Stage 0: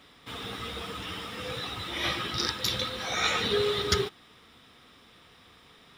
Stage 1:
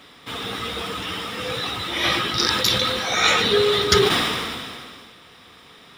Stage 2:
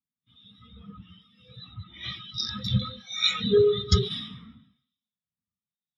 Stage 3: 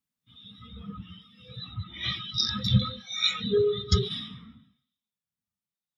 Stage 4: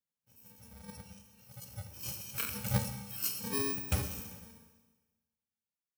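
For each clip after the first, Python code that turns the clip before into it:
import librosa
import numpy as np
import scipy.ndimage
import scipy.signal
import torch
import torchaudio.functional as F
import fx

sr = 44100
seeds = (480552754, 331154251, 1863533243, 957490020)

y1 = fx.low_shelf(x, sr, hz=91.0, db=-8.5)
y1 = fx.sustainer(y1, sr, db_per_s=28.0)
y1 = y1 * librosa.db_to_amplitude(8.5)
y2 = fx.curve_eq(y1, sr, hz=(210.0, 350.0, 7300.0), db=(0, -12, -2))
y2 = fx.harmonic_tremolo(y2, sr, hz=1.1, depth_pct=50, crossover_hz=2500.0)
y2 = fx.spectral_expand(y2, sr, expansion=2.5)
y3 = fx.rider(y2, sr, range_db=5, speed_s=0.5)
y4 = fx.bit_reversed(y3, sr, seeds[0], block=64)
y4 = fx.rev_schroeder(y4, sr, rt60_s=1.3, comb_ms=27, drr_db=7.0)
y4 = fx.doppler_dist(y4, sr, depth_ms=0.12)
y4 = y4 * librosa.db_to_amplitude(-8.5)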